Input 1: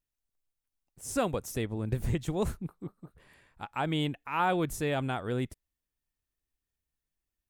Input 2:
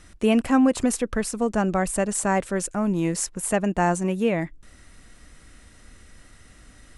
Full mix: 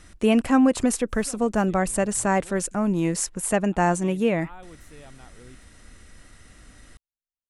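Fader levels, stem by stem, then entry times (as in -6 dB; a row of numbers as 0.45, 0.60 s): -17.5, +0.5 dB; 0.10, 0.00 s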